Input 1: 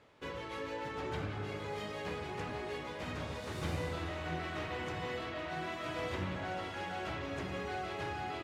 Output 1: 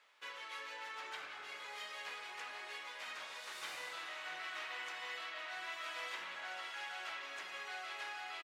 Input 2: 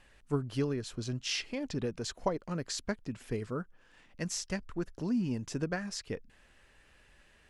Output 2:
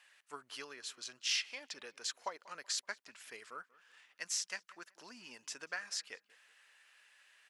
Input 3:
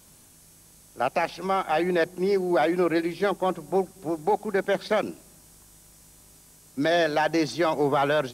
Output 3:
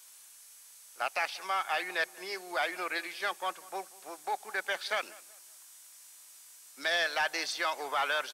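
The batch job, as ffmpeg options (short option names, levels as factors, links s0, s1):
-filter_complex "[0:a]highpass=1300,asplit=2[s0][s1];[s1]asoftclip=type=hard:threshold=0.0501,volume=0.447[s2];[s0][s2]amix=inputs=2:normalize=0,asplit=2[s3][s4];[s4]adelay=189,lowpass=f=2700:p=1,volume=0.0891,asplit=2[s5][s6];[s6]adelay=189,lowpass=f=2700:p=1,volume=0.34,asplit=2[s7][s8];[s8]adelay=189,lowpass=f=2700:p=1,volume=0.34[s9];[s3][s5][s7][s9]amix=inputs=4:normalize=0,volume=0.75"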